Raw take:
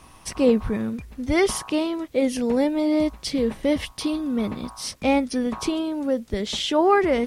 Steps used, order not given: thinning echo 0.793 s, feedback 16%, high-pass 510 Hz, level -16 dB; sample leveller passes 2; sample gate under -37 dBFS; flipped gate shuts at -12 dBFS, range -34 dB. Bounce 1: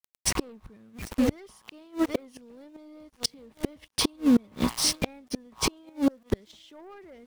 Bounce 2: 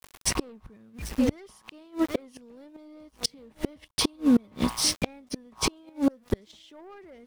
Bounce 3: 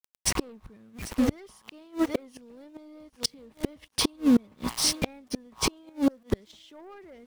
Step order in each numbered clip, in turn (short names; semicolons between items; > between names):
sample gate > thinning echo > sample leveller > flipped gate; thinning echo > sample leveller > sample gate > flipped gate; sample gate > sample leveller > thinning echo > flipped gate